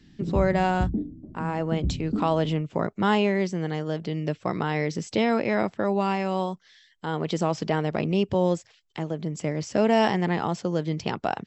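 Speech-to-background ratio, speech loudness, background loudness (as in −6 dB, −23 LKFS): 5.5 dB, −26.5 LKFS, −32.0 LKFS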